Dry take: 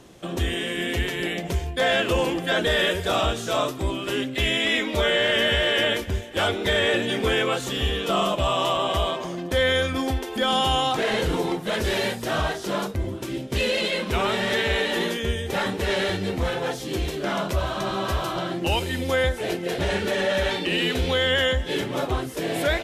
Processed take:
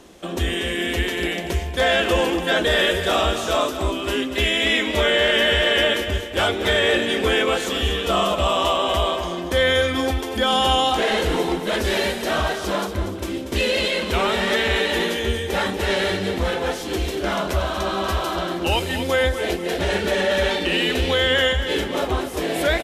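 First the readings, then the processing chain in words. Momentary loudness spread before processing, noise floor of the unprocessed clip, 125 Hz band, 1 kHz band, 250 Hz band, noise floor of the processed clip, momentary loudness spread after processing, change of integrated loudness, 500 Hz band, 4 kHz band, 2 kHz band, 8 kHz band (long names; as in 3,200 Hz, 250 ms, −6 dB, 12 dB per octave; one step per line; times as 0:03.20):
7 LU, −34 dBFS, +1.0 dB, +3.5 dB, +2.5 dB, −29 dBFS, 7 LU, +3.0 dB, +3.5 dB, +3.5 dB, +3.5 dB, +3.5 dB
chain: parametric band 130 Hz −14 dB 0.46 octaves
on a send: repeating echo 237 ms, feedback 37%, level −10 dB
on the sum: level +3 dB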